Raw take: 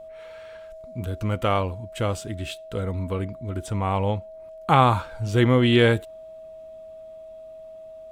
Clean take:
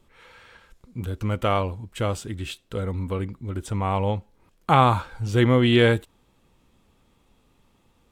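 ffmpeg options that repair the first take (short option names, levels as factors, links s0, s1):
-af "bandreject=f=640:w=30"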